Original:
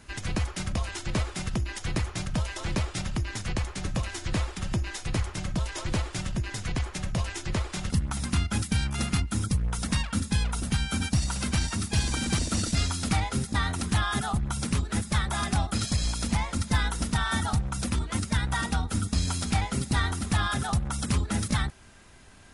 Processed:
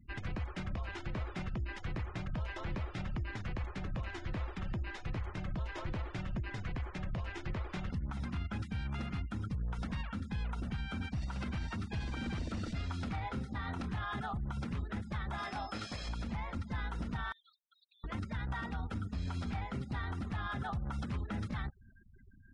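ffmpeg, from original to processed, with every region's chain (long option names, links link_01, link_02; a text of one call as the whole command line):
ffmpeg -i in.wav -filter_complex "[0:a]asettb=1/sr,asplit=3[link_01][link_02][link_03];[link_01]atrim=end=13.154[link_04];[link_02]atrim=start=13.15:end=14.13,asetpts=PTS-STARTPTS,afade=type=in:duration=0.004:curve=qsin,afade=type=out:start_time=0.976:duration=0.004:curve=qsin,acrusher=bits=8:mix=0:aa=0.5,asplit=2[link_05][link_06];[link_06]adelay=27,volume=-7.5dB[link_07];[link_05][link_07]amix=inputs=2:normalize=0,atrim=end_sample=43218[link_08];[link_03]atrim=start=14.126[link_09];[link_04][link_08]acrossfade=duration=0.004:curve1=hsin:curve2=qsin[link_10];[link_10][link_09]acrossfade=duration=0.004:curve1=qsin:curve2=hsin,asettb=1/sr,asplit=3[link_11][link_12][link_13];[link_11]atrim=end=15.384[link_14];[link_12]atrim=start=15.38:end=16.09,asetpts=PTS-STARTPTS,afade=type=in:duration=0.004:curve=qsin,afade=type=out:start_time=0.706:duration=0.004:curve=qsin,bass=frequency=250:gain=-14,treble=frequency=4000:gain=3,aeval=exprs='val(0)+0.0158*sin(2*PI*5200*n/s)':channel_layout=same,asplit=2[link_15][link_16];[link_16]adelay=19,volume=-7.5dB[link_17];[link_15][link_17]amix=inputs=2:normalize=0,atrim=end_sample=31311[link_18];[link_13]atrim=start=16.086[link_19];[link_14][link_18]acrossfade=duration=0.004:curve1=hsin:curve2=qsin[link_20];[link_20][link_19]acrossfade=duration=0.004:curve1=qsin:curve2=hsin,asettb=1/sr,asplit=3[link_21][link_22][link_23];[link_21]atrim=end=17.324[link_24];[link_22]atrim=start=17.32:end=18.04,asetpts=PTS-STARTPTS,afade=type=in:duration=0.004:curve=qsin,afade=type=out:start_time=0.716:duration=0.004:curve=qsin,bandpass=frequency=3800:width_type=q:width=3.7,acompressor=threshold=-49dB:ratio=8:attack=3.2:release=140:knee=1:detection=peak[link_25];[link_23]atrim=start=18.036[link_26];[link_24][link_25]acrossfade=duration=0.004:curve1=hsin:curve2=qsin[link_27];[link_27][link_26]acrossfade=duration=0.004:curve1=qsin:curve2=hsin,afftfilt=real='re*gte(hypot(re,im),0.00708)':imag='im*gte(hypot(re,im),0.00708)':win_size=1024:overlap=0.75,lowpass=2500,alimiter=level_in=2dB:limit=-24dB:level=0:latency=1:release=84,volume=-2dB,volume=-4dB" out.wav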